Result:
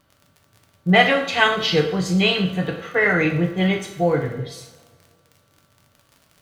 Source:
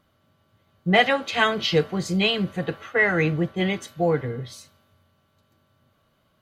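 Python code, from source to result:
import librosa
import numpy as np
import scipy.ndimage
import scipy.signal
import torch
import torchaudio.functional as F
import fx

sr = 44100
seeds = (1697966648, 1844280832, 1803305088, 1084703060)

y = fx.dmg_crackle(x, sr, seeds[0], per_s=42.0, level_db=-38.0)
y = fx.rev_double_slope(y, sr, seeds[1], early_s=0.57, late_s=2.0, knee_db=-19, drr_db=2.0)
y = y * 10.0 ** (1.5 / 20.0)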